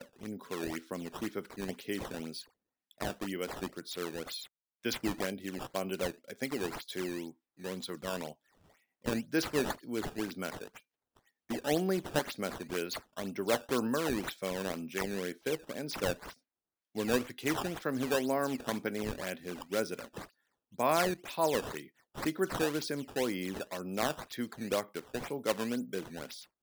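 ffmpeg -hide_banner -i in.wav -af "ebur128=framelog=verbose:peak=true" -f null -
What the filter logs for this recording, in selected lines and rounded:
Integrated loudness:
  I:         -35.6 LUFS
  Threshold: -46.0 LUFS
Loudness range:
  LRA:         5.6 LU
  Threshold: -55.9 LUFS
  LRA low:   -39.5 LUFS
  LRA high:  -33.9 LUFS
True peak:
  Peak:      -15.0 dBFS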